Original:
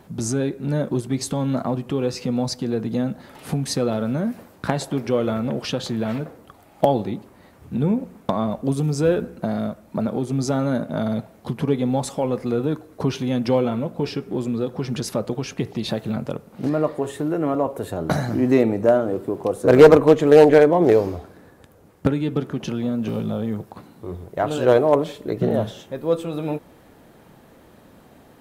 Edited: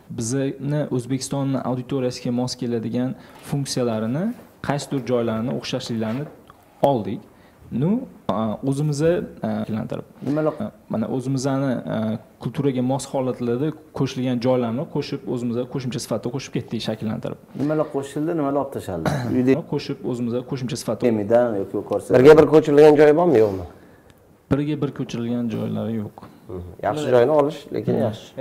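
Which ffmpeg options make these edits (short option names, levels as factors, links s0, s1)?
-filter_complex "[0:a]asplit=5[s0][s1][s2][s3][s4];[s0]atrim=end=9.642[s5];[s1]atrim=start=16.008:end=16.972[s6];[s2]atrim=start=9.638:end=18.582[s7];[s3]atrim=start=13.808:end=15.312[s8];[s4]atrim=start=18.578[s9];[s5][s6]acrossfade=d=0.004:c1=hsin:c2=hsin[s10];[s10][s7]acrossfade=d=0.004:c1=hsin:c2=hsin[s11];[s11][s8]acrossfade=d=0.004:c1=hsin:c2=hsin[s12];[s12][s9]acrossfade=d=0.004:c1=hsin:c2=hsin"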